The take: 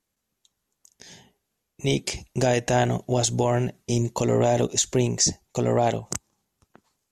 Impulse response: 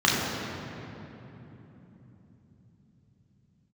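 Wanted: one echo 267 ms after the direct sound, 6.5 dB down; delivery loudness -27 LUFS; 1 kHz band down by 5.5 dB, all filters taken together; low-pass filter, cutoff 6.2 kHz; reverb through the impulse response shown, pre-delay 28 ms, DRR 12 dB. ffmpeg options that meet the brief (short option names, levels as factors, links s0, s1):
-filter_complex "[0:a]lowpass=6200,equalizer=f=1000:t=o:g=-9,aecho=1:1:267:0.473,asplit=2[s0][s1];[1:a]atrim=start_sample=2205,adelay=28[s2];[s1][s2]afir=irnorm=-1:irlink=0,volume=0.0299[s3];[s0][s3]amix=inputs=2:normalize=0,volume=0.75"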